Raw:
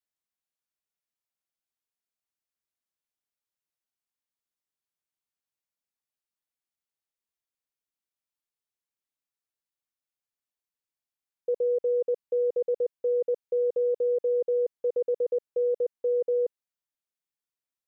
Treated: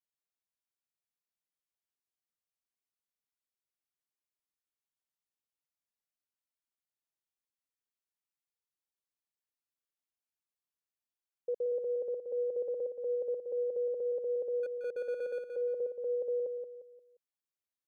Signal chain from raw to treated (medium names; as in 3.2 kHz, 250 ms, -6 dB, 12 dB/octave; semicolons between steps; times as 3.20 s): 14.63–15.42 s: median filter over 41 samples; feedback delay 176 ms, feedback 36%, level -6 dB; trim -7.5 dB